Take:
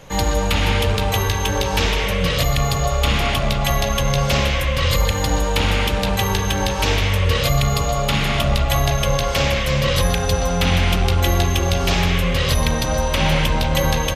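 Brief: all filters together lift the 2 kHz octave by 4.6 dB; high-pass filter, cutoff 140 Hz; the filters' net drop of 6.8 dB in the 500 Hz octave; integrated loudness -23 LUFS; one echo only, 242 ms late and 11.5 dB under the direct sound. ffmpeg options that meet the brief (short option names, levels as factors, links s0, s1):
-af "highpass=140,equalizer=f=500:t=o:g=-8.5,equalizer=f=2000:t=o:g=6,aecho=1:1:242:0.266,volume=0.631"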